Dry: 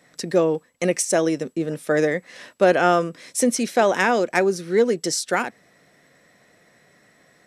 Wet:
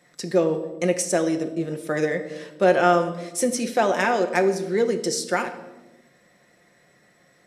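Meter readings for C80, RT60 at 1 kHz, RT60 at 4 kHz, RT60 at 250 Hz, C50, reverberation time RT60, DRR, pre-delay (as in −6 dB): 13.0 dB, 0.90 s, 0.75 s, 1.5 s, 11.0 dB, 1.1 s, 5.5 dB, 6 ms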